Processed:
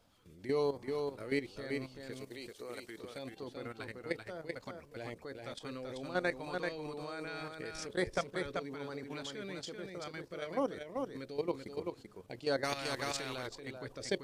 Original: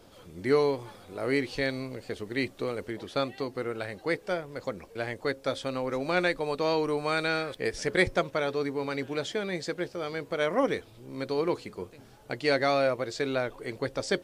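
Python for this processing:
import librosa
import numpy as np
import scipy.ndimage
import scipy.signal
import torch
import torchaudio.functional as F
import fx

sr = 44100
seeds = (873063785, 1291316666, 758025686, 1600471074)

y = fx.filter_lfo_notch(x, sr, shape='saw_up', hz=1.1, low_hz=340.0, high_hz=4000.0, q=1.4)
y = fx.level_steps(y, sr, step_db=13)
y = fx.bass_treble(y, sr, bass_db=-12, treble_db=8, at=(2.12, 2.98))
y = y + 10.0 ** (-4.5 / 20.0) * np.pad(y, (int(386 * sr / 1000.0), 0))[:len(y)]
y = fx.spectral_comp(y, sr, ratio=2.0, at=(12.63, 13.46), fade=0.02)
y = y * librosa.db_to_amplitude(-4.5)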